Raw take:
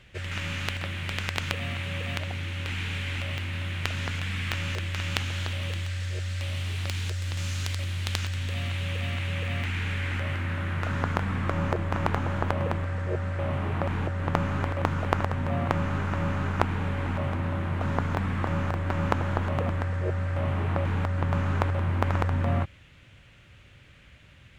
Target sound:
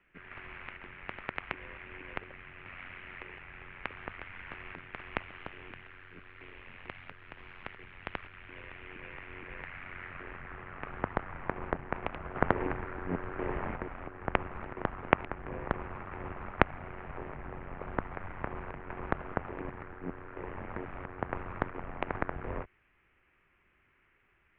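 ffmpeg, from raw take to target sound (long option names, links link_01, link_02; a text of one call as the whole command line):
ffmpeg -i in.wav -filter_complex "[0:a]aeval=exprs='0.891*(cos(1*acos(clip(val(0)/0.891,-1,1)))-cos(1*PI/2))+0.282*(cos(3*acos(clip(val(0)/0.891,-1,1)))-cos(3*PI/2))+0.126*(cos(4*acos(clip(val(0)/0.891,-1,1)))-cos(4*PI/2))+0.0282*(cos(5*acos(clip(val(0)/0.891,-1,1)))-cos(5*PI/2))+0.158*(cos(6*acos(clip(val(0)/0.891,-1,1)))-cos(6*PI/2))':channel_layout=same,asettb=1/sr,asplit=3[link_01][link_02][link_03];[link_01]atrim=end=12.354[link_04];[link_02]atrim=start=12.35:end=13.76,asetpts=PTS-STARTPTS,afade=type=in:duration=0.004:curve=qsin,afade=type=out:start_time=1.406:duration=0.004:curve=qsin,acontrast=83[link_05];[link_03]atrim=start=13.756[link_06];[link_04][link_05]acrossfade=duration=0.004:curve1=hsin:curve2=qsin[link_07];[link_07][link_06]acrossfade=duration=0.004:curve1=qsin:curve2=hsin,highpass=frequency=170:width_type=q:width=0.5412,highpass=frequency=170:width_type=q:width=1.307,lowpass=frequency=2700:width_type=q:width=0.5176,lowpass=frequency=2700:width_type=q:width=0.7071,lowpass=frequency=2700:width_type=q:width=1.932,afreqshift=-190,volume=2.5dB" out.wav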